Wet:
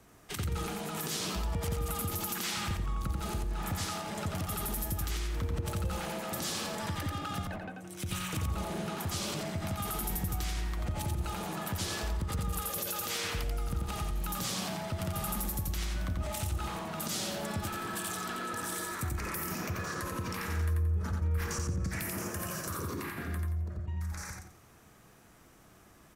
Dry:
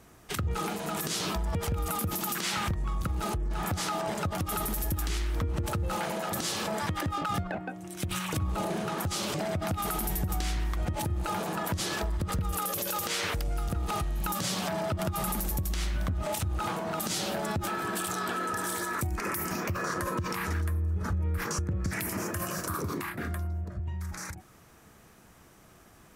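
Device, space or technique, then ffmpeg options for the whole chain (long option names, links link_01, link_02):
one-band saturation: -filter_complex "[0:a]acrossover=split=270|2100[link_01][link_02][link_03];[link_02]asoftclip=type=tanh:threshold=-34dB[link_04];[link_01][link_04][link_03]amix=inputs=3:normalize=0,aecho=1:1:88|176|264|352:0.631|0.183|0.0531|0.0154,volume=-4dB"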